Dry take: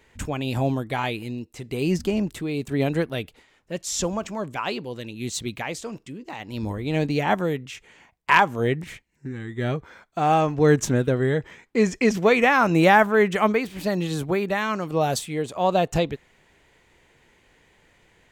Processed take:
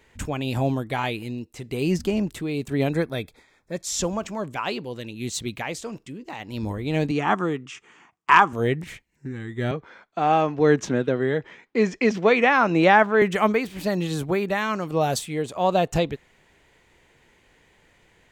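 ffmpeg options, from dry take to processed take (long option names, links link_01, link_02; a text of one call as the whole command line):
ffmpeg -i in.wav -filter_complex "[0:a]asettb=1/sr,asplit=3[link_01][link_02][link_03];[link_01]atrim=end=2.904[link_04];[link_02]atrim=start=2.9:end=3.85,asetpts=PTS-STARTPTS,afade=type=in:duration=0.004:curve=qsin,afade=type=out:start_time=0.946:duration=0.004:curve=qsin,asuperstop=centerf=2900:order=8:qfactor=5.6[link_05];[link_03]atrim=start=3.846[link_06];[link_04][link_05]acrossfade=duration=0.004:curve1=hsin:curve2=qsin[link_07];[link_07][link_06]acrossfade=duration=0.004:curve1=qsin:curve2=hsin,asettb=1/sr,asplit=3[link_08][link_09][link_10];[link_08]atrim=end=7.114[link_11];[link_09]atrim=start=7.11:end=8.53,asetpts=PTS-STARTPTS,afade=type=in:duration=0.004:curve=qsin,afade=type=out:start_time=1.416:duration=0.004:curve=qsin,highpass=150,equalizer=frequency=330:width_type=q:width=4:gain=4,equalizer=frequency=560:width_type=q:width=4:gain=-9,equalizer=frequency=1200:width_type=q:width=4:gain=10,equalizer=frequency=2100:width_type=q:width=4:gain=-3,equalizer=frequency=4100:width_type=q:width=4:gain=-8,lowpass=frequency=8500:width=0.5412,lowpass=frequency=8500:width=1.3066[link_12];[link_10]atrim=start=8.526[link_13];[link_11][link_12]acrossfade=duration=0.004:curve1=hsin:curve2=qsin[link_14];[link_14][link_13]acrossfade=duration=0.004:curve1=qsin:curve2=hsin,asettb=1/sr,asplit=3[link_15][link_16][link_17];[link_15]atrim=end=9.714[link_18];[link_16]atrim=start=9.71:end=13.22,asetpts=PTS-STARTPTS,afade=type=in:duration=0.004:curve=qsin,afade=type=out:start_time=3.506:duration=0.004:curve=qsin,acrossover=split=160 5900:gain=0.224 1 0.0891[link_19][link_20][link_21];[link_19][link_20][link_21]amix=inputs=3:normalize=0[link_22];[link_17]atrim=start=13.216[link_23];[link_18][link_22]acrossfade=duration=0.004:curve1=hsin:curve2=qsin[link_24];[link_24][link_23]acrossfade=duration=0.004:curve1=qsin:curve2=hsin" out.wav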